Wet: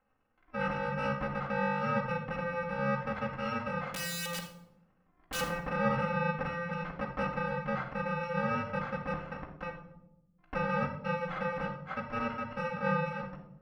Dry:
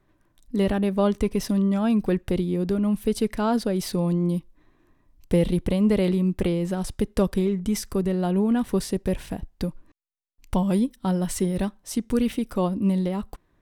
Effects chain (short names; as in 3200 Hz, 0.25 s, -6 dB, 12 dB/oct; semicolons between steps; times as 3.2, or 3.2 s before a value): FFT order left unsorted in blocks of 128 samples; LPF 1600 Hz 24 dB/oct; tilt +4.5 dB/oct; 3.81–5.41 wrapped overs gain 29 dB; reverb RT60 0.90 s, pre-delay 4 ms, DRR -1.5 dB